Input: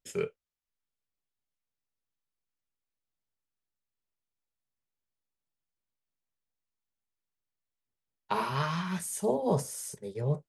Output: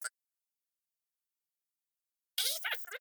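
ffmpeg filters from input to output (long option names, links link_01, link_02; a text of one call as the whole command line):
ffmpeg -i in.wav -af "asetrate=153909,aresample=44100,aderivative,volume=4.5dB" out.wav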